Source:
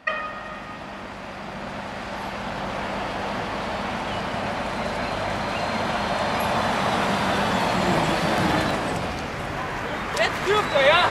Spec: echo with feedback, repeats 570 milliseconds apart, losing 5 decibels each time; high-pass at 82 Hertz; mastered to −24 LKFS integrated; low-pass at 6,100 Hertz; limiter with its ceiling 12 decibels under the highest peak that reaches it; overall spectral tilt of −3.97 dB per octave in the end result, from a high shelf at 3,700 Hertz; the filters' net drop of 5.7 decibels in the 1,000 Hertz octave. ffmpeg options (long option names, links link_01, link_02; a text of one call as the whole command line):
ffmpeg -i in.wav -af "highpass=82,lowpass=6100,equalizer=frequency=1000:width_type=o:gain=-7,highshelf=frequency=3700:gain=-8,alimiter=limit=-19.5dB:level=0:latency=1,aecho=1:1:570|1140|1710|2280|2850|3420|3990:0.562|0.315|0.176|0.0988|0.0553|0.031|0.0173,volume=4.5dB" out.wav